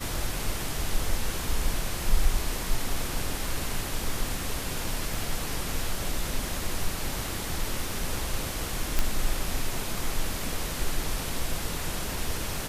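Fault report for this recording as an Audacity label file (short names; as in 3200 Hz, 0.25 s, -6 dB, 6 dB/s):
5.140000	5.140000	gap 2.7 ms
8.990000	8.990000	pop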